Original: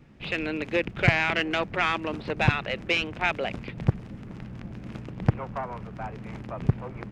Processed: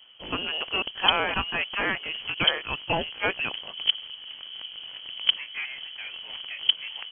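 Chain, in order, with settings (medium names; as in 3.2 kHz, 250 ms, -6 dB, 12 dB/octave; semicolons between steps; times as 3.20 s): sawtooth pitch modulation +2.5 st, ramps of 488 ms; frequency inversion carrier 3.2 kHz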